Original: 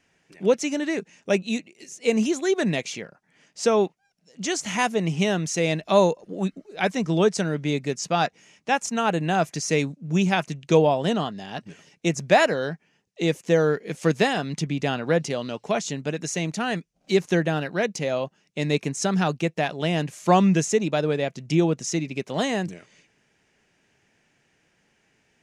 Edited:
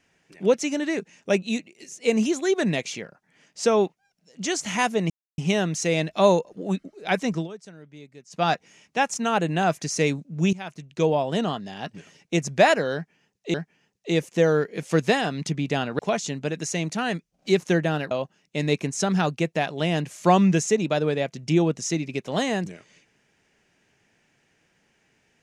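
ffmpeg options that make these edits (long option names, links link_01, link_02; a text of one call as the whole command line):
ffmpeg -i in.wav -filter_complex "[0:a]asplit=8[link_01][link_02][link_03][link_04][link_05][link_06][link_07][link_08];[link_01]atrim=end=5.1,asetpts=PTS-STARTPTS,afade=type=out:start_time=5.096:duration=0.004:curve=hsin,apad=pad_dur=0.28[link_09];[link_02]atrim=start=5.1:end=7.2,asetpts=PTS-STARTPTS,afade=type=in:duration=0.004:curve=hsin,afade=type=out:start_time=1.97:duration=0.13:silence=0.1[link_10];[link_03]atrim=start=7.2:end=8.02,asetpts=PTS-STARTPTS,volume=-20dB[link_11];[link_04]atrim=start=8.02:end=10.25,asetpts=PTS-STARTPTS,afade=type=in:duration=0.13:silence=0.1,afade=type=out:start_time=2.226:duration=0.004:curve=hsin:silence=0.112202[link_12];[link_05]atrim=start=10.25:end=13.262,asetpts=PTS-STARTPTS,afade=type=in:duration=1.36:curve=qsin:silence=0.112202[link_13];[link_06]atrim=start=12.658:end=15.112[link_14];[link_07]atrim=start=15.608:end=17.732[link_15];[link_08]atrim=start=18.128[link_16];[link_09][link_10][link_11][link_12][link_13]concat=n=5:v=0:a=1[link_17];[link_17][link_14]acrossfade=duration=0.004:curve1=hsin:curve2=hsin[link_18];[link_18][link_15]acrossfade=duration=0.004:curve1=hsin:curve2=hsin[link_19];[link_19][link_16]acrossfade=duration=0.004:curve1=hsin:curve2=hsin" out.wav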